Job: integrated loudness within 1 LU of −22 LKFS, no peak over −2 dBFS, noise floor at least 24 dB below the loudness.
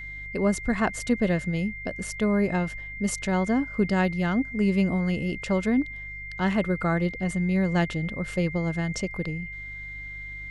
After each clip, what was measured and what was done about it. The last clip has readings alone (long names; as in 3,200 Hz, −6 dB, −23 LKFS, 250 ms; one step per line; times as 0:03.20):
mains hum 50 Hz; hum harmonics up to 150 Hz; level of the hum −41 dBFS; interfering tone 2,100 Hz; level of the tone −36 dBFS; integrated loudness −26.5 LKFS; sample peak −10.5 dBFS; target loudness −22.0 LKFS
→ hum removal 50 Hz, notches 3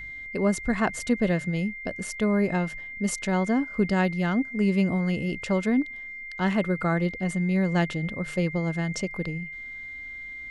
mains hum none found; interfering tone 2,100 Hz; level of the tone −36 dBFS
→ notch filter 2,100 Hz, Q 30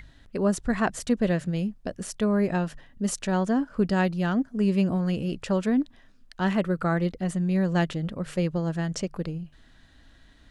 interfering tone none found; integrated loudness −26.5 LKFS; sample peak −11.5 dBFS; target loudness −22.0 LKFS
→ level +4.5 dB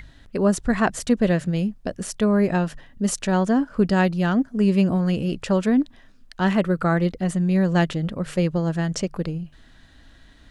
integrated loudness −22.0 LKFS; sample peak −7.0 dBFS; background noise floor −51 dBFS